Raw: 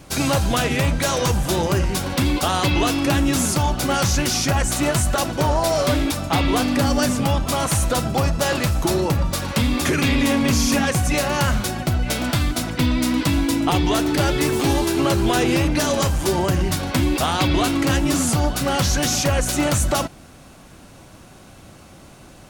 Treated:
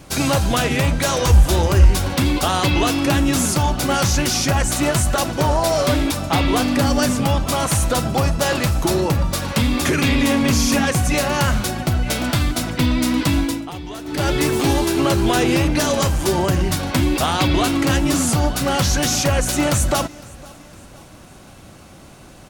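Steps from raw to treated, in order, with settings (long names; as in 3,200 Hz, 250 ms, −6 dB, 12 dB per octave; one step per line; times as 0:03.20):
0:01.23–0:02.09: low shelf with overshoot 100 Hz +9 dB, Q 1.5
repeating echo 508 ms, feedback 48%, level −23 dB
0:13.39–0:14.32: duck −14 dB, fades 0.28 s
level +1.5 dB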